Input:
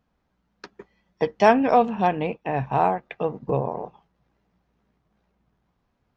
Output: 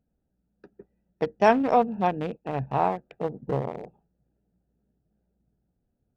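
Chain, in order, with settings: local Wiener filter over 41 samples; trim -2.5 dB

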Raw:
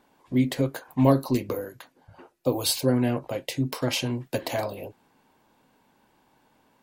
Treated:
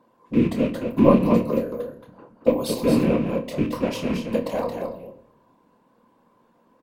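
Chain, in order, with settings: rattle on loud lows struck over -28 dBFS, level -20 dBFS; wow and flutter 22 cents; delay 224 ms -6 dB; whisper effect; doubling 27 ms -8.5 dB; small resonant body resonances 240/490/1000 Hz, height 15 dB, ringing for 20 ms; on a send at -10 dB: reverberation RT60 0.80 s, pre-delay 6 ms; on the sum: trim -9.5 dB

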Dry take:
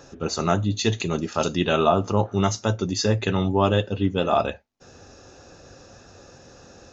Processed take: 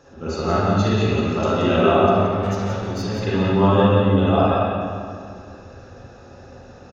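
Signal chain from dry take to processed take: treble shelf 4.6 kHz -8 dB; 2.00–3.23 s: valve stage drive 26 dB, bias 0.25; delay 176 ms -7.5 dB; reverberation RT60 2.2 s, pre-delay 40 ms, DRR -9.5 dB; trim -5.5 dB

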